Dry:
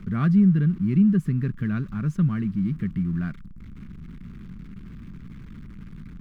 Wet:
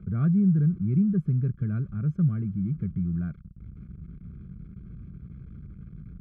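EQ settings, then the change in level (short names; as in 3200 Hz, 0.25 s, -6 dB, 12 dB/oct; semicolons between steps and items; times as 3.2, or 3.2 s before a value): running mean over 47 samples; HPF 54 Hz; bell 250 Hz -11.5 dB 1.1 oct; +4.0 dB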